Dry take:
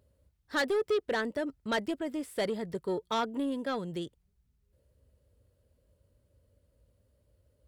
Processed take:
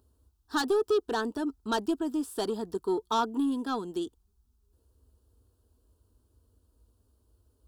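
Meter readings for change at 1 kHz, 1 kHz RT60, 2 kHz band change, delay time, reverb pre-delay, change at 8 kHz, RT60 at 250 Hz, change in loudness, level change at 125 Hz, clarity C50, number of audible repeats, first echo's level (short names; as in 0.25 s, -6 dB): +4.5 dB, none, -3.5 dB, none, none, +4.5 dB, none, +2.5 dB, -4.0 dB, none, none, none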